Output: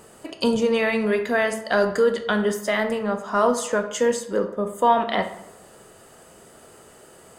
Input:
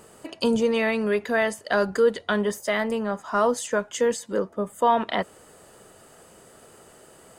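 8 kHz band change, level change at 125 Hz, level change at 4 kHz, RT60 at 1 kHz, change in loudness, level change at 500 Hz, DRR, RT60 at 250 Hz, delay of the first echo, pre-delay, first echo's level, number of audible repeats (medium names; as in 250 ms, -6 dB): +2.0 dB, no reading, +2.0 dB, 0.85 s, +2.0 dB, +2.0 dB, 7.0 dB, 0.90 s, no echo, 11 ms, no echo, no echo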